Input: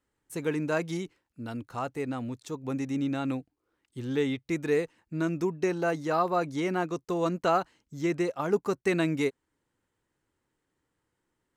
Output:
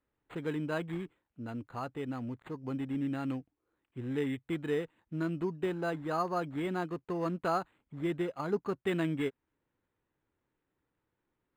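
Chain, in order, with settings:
dynamic equaliser 550 Hz, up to −4 dB, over −38 dBFS, Q 1
linearly interpolated sample-rate reduction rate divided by 8×
level −3 dB

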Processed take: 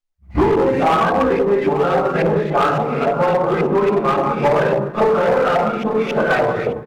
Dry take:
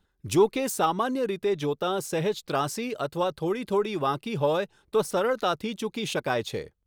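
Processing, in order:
turntable start at the beginning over 0.40 s
rectangular room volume 590 cubic metres, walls mixed, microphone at 7 metres
in parallel at 0 dB: brickwall limiter −4 dBFS, peak gain reduction 7 dB
on the sum: auto-filter low-pass saw up 3.6 Hz 730–2,400 Hz
bit-depth reduction 10 bits, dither triangular
on a send: single-tap delay 892 ms −11.5 dB
on the sum: downward compressor 8 to 1, threshold −7 dBFS, peak gain reduction 7 dB
downward expander −4 dBFS
windowed peak hold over 3 samples

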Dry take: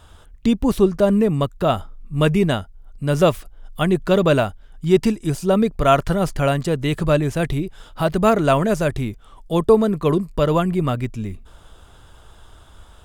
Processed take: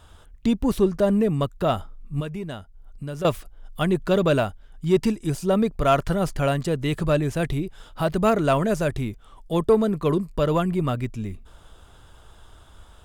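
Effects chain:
in parallel at −6 dB: soft clipping −13 dBFS, distortion −13 dB
0:02.20–0:03.25: on the sum: downward compressor 3 to 1, threshold −26 dBFS, peak gain reduction 13 dB
level −6.5 dB

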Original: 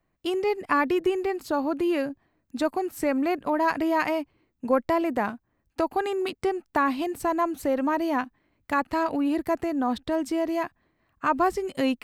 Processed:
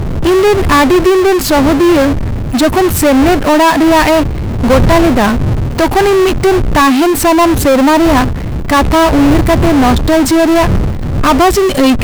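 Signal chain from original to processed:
wind on the microphone 110 Hz −34 dBFS
harmonic and percussive parts rebalanced harmonic +5 dB
power curve on the samples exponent 0.35
level +4 dB

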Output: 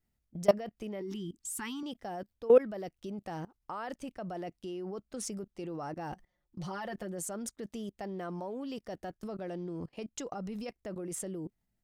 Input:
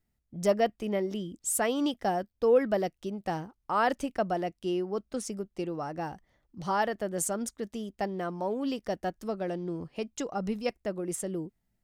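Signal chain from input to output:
0:01.01–0:01.83: elliptic band-stop filter 390–870 Hz
0:06.12–0:07.29: comb filter 5.6 ms, depth 88%
output level in coarse steps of 21 dB
level +3.5 dB

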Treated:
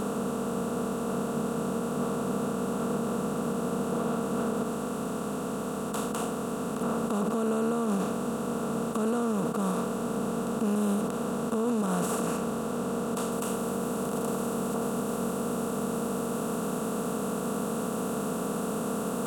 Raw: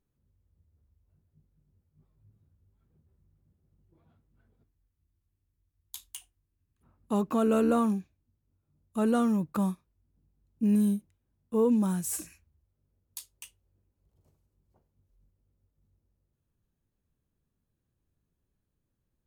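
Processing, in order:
compressor on every frequency bin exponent 0.2
high-shelf EQ 8,800 Hz −10.5 dB, from 0:13.32 −3 dB
brickwall limiter −20 dBFS, peak gain reduction 11.5 dB

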